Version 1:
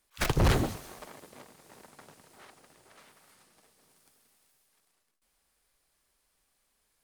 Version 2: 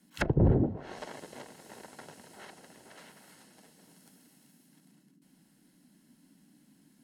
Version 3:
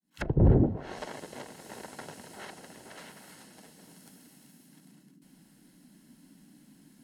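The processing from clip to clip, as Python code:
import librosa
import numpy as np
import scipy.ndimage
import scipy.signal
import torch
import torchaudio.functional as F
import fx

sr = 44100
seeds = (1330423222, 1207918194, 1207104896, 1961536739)

y1 = fx.notch_comb(x, sr, f0_hz=1200.0)
y1 = fx.env_lowpass_down(y1, sr, base_hz=400.0, full_db=-28.5)
y1 = fx.dmg_noise_band(y1, sr, seeds[0], low_hz=150.0, high_hz=300.0, level_db=-69.0)
y1 = F.gain(torch.from_numpy(y1), 5.5).numpy()
y2 = fx.fade_in_head(y1, sr, length_s=0.56)
y2 = fx.low_shelf(y2, sr, hz=61.0, db=7.0)
y2 = fx.rider(y2, sr, range_db=5, speed_s=2.0)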